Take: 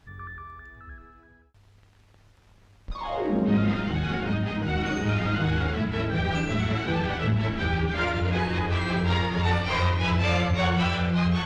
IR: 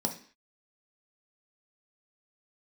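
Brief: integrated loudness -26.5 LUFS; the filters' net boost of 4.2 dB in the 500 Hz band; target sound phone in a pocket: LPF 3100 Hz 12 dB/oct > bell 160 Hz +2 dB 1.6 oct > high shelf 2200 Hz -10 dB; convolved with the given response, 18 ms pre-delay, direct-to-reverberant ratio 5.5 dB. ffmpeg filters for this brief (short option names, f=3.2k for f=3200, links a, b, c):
-filter_complex "[0:a]equalizer=f=500:t=o:g=5.5,asplit=2[a][b];[1:a]atrim=start_sample=2205,adelay=18[c];[b][c]afir=irnorm=-1:irlink=0,volume=-10.5dB[d];[a][d]amix=inputs=2:normalize=0,lowpass=3.1k,equalizer=f=160:t=o:w=1.6:g=2,highshelf=f=2.2k:g=-10,volume=-7dB"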